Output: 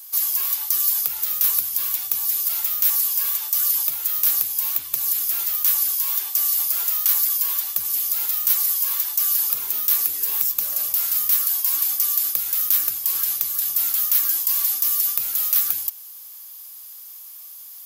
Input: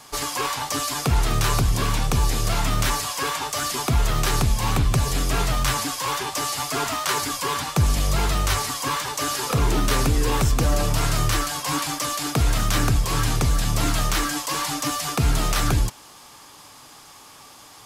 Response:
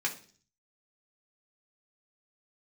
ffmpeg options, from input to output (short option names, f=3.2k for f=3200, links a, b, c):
-af "aexciter=amount=11.9:drive=2.3:freq=12k,aeval=exprs='0.944*sin(PI/2*1.41*val(0)/0.944)':c=same,aderivative,volume=-7dB"